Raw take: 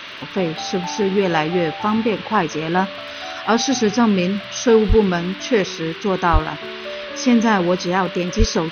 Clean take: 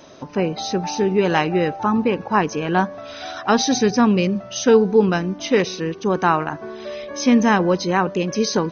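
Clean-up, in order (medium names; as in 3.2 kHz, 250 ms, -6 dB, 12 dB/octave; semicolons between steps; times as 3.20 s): de-click; band-stop 2.8 kHz, Q 30; 4.88–5.00 s: high-pass 140 Hz 24 dB/octave; 6.32–6.44 s: high-pass 140 Hz 24 dB/octave; 8.38–8.50 s: high-pass 140 Hz 24 dB/octave; noise print and reduce 6 dB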